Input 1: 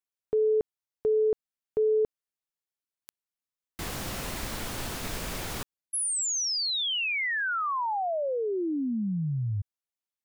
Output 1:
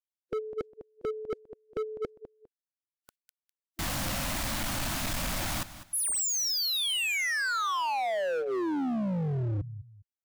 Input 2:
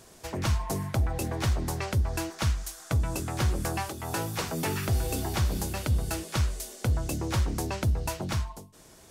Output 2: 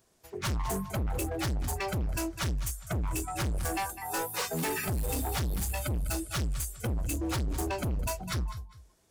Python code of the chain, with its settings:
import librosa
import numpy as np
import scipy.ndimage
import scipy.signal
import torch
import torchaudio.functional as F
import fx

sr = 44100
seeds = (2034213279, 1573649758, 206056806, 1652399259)

y = fx.noise_reduce_blind(x, sr, reduce_db=21)
y = fx.echo_feedback(y, sr, ms=202, feedback_pct=25, wet_db=-17.0)
y = np.clip(10.0 ** (34.0 / 20.0) * y, -1.0, 1.0) / 10.0 ** (34.0 / 20.0)
y = F.gain(torch.from_numpy(y), 5.5).numpy()